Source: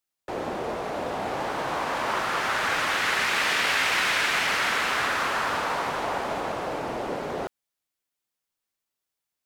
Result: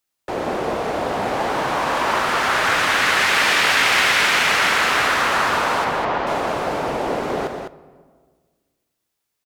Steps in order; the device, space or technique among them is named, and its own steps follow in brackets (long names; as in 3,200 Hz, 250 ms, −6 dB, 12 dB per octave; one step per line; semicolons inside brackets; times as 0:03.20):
compressed reverb return (on a send at −12.5 dB: convolution reverb RT60 1.5 s, pre-delay 15 ms + downward compressor, threshold −34 dBFS, peak gain reduction 12.5 dB)
0:05.84–0:06.27: on the sum: high-frequency loss of the air 170 metres
loudspeakers that aren't time-aligned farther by 42 metres −12 dB, 70 metres −7 dB
level +6.5 dB